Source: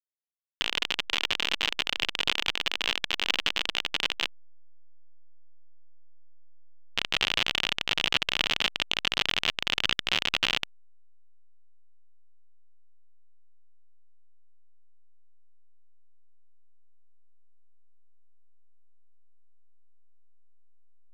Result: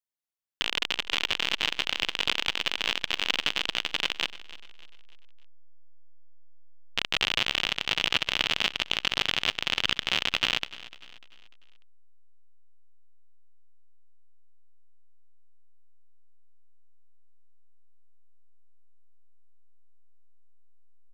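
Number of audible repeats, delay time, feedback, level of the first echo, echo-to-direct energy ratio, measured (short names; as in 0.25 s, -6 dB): 3, 0.297 s, 44%, -18.0 dB, -17.0 dB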